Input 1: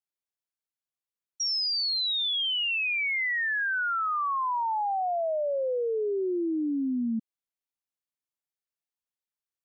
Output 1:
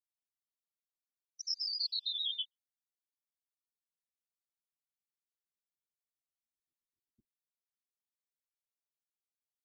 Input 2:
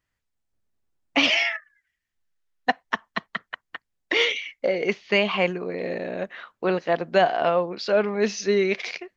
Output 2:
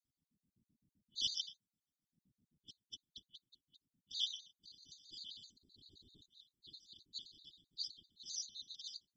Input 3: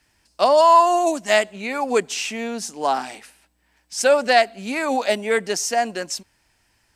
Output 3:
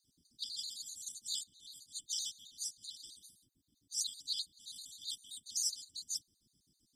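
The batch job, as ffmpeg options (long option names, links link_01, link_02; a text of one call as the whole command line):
ffmpeg -i in.wav -af "afftfilt=real='re*(1-between(b*sr/4096,120,3200))':imag='im*(1-between(b*sr/4096,120,3200))':win_size=4096:overlap=0.75,aeval=exprs='val(0)*sin(2*PI*180*n/s)':channel_layout=same,afftfilt=real='hypot(re,im)*cos(2*PI*random(0))':imag='hypot(re,im)*sin(2*PI*random(1))':win_size=512:overlap=0.75,afftfilt=real='re*gt(sin(2*PI*7.7*pts/sr)*(1-2*mod(floor(b*sr/1024/1200),2)),0)':imag='im*gt(sin(2*PI*7.7*pts/sr)*(1-2*mod(floor(b*sr/1024/1200),2)),0)':win_size=1024:overlap=0.75,volume=3.5dB" out.wav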